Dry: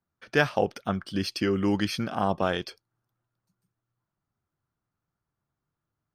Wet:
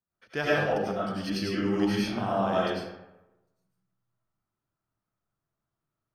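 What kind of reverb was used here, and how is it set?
digital reverb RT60 1 s, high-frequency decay 0.55×, pre-delay 60 ms, DRR -8 dB; gain -9.5 dB

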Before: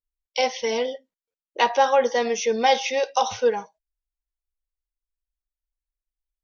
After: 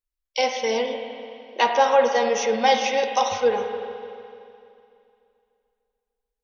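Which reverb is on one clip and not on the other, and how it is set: spring tank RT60 2.6 s, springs 42/49 ms, chirp 55 ms, DRR 4.5 dB

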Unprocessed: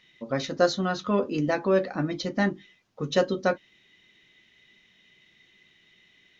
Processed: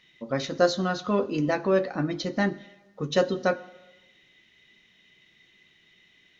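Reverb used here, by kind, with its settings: plate-style reverb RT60 1.1 s, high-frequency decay 0.95×, DRR 16 dB

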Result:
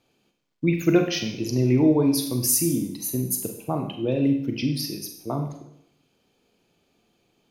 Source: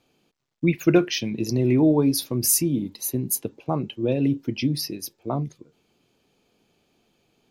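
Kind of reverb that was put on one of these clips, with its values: Schroeder reverb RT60 0.72 s, combs from 32 ms, DRR 4.5 dB; gain -2 dB

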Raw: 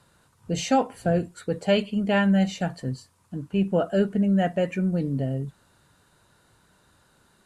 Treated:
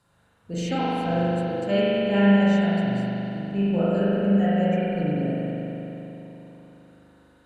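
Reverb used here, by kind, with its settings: spring tank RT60 3.7 s, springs 40 ms, chirp 60 ms, DRR -9.5 dB; gain -8.5 dB

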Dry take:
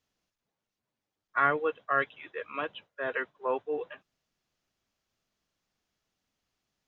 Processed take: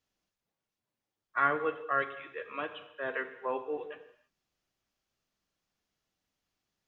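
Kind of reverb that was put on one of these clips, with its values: non-linear reverb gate 0.35 s falling, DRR 8.5 dB; gain -3 dB

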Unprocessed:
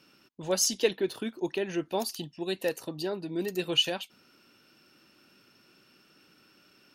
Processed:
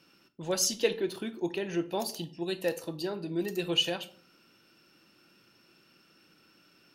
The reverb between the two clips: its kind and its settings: shoebox room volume 460 m³, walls furnished, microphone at 0.75 m; gain -2 dB

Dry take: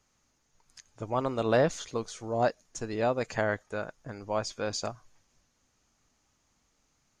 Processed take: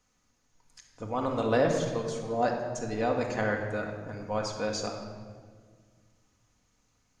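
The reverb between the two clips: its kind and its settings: shoebox room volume 2200 m³, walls mixed, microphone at 1.9 m; gain -2.5 dB

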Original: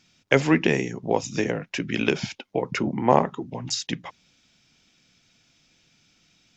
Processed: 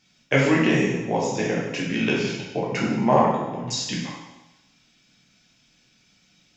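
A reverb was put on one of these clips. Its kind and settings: plate-style reverb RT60 1 s, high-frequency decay 0.95×, pre-delay 0 ms, DRR -5 dB; gain -4.5 dB

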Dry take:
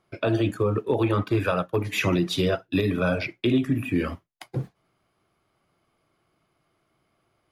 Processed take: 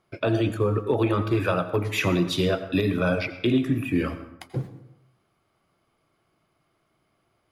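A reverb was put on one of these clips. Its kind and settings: plate-style reverb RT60 0.85 s, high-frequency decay 0.6×, pre-delay 75 ms, DRR 11.5 dB

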